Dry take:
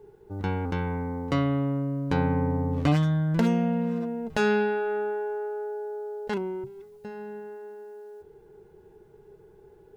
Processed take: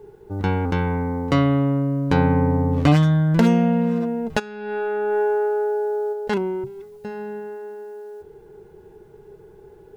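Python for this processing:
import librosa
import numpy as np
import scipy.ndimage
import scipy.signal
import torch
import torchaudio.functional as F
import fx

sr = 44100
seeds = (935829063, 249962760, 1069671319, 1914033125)

y = fx.over_compress(x, sr, threshold_db=-30.0, ratio=-0.5, at=(4.38, 6.12), fade=0.02)
y = y * 10.0 ** (7.0 / 20.0)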